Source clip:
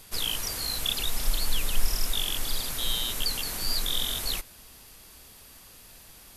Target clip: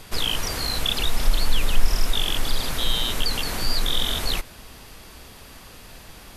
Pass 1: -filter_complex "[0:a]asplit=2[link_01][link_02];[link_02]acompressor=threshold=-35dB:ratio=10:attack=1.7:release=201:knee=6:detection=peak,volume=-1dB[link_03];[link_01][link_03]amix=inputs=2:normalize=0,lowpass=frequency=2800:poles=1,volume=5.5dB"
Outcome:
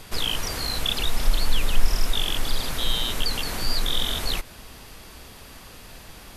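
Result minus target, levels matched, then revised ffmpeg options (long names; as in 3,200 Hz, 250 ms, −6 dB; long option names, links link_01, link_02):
downward compressor: peak gain reduction +6.5 dB
-filter_complex "[0:a]asplit=2[link_01][link_02];[link_02]acompressor=threshold=-28dB:ratio=10:attack=1.7:release=201:knee=6:detection=peak,volume=-1dB[link_03];[link_01][link_03]amix=inputs=2:normalize=0,lowpass=frequency=2800:poles=1,volume=5.5dB"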